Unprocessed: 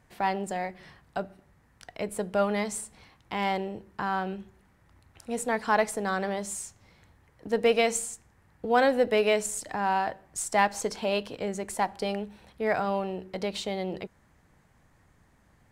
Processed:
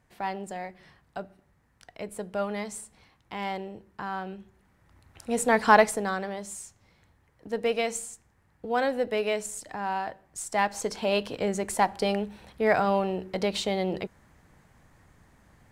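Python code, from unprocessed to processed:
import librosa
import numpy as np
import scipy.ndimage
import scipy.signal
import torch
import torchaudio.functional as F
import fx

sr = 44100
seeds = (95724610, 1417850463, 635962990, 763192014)

y = fx.gain(x, sr, db=fx.line((4.4, -4.5), (5.7, 7.5), (6.28, -4.0), (10.39, -4.0), (11.36, 4.0)))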